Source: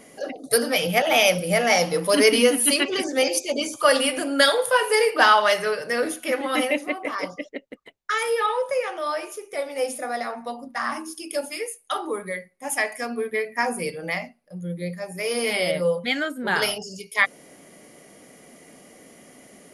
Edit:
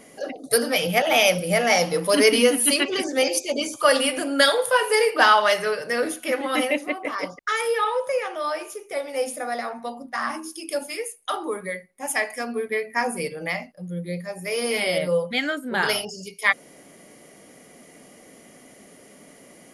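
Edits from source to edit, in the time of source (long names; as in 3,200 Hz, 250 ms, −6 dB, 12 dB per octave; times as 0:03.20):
truncate silence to 0.14 s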